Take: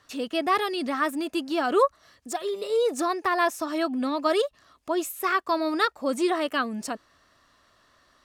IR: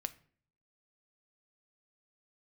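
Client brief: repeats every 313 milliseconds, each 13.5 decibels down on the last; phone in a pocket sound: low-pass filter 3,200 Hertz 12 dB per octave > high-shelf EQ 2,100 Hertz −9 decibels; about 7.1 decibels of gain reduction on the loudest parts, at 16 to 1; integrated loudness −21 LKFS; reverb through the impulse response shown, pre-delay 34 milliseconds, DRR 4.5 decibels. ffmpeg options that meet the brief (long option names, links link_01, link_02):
-filter_complex "[0:a]acompressor=threshold=-23dB:ratio=16,aecho=1:1:313|626:0.211|0.0444,asplit=2[link_01][link_02];[1:a]atrim=start_sample=2205,adelay=34[link_03];[link_02][link_03]afir=irnorm=-1:irlink=0,volume=-3dB[link_04];[link_01][link_04]amix=inputs=2:normalize=0,lowpass=3200,highshelf=frequency=2100:gain=-9,volume=8dB"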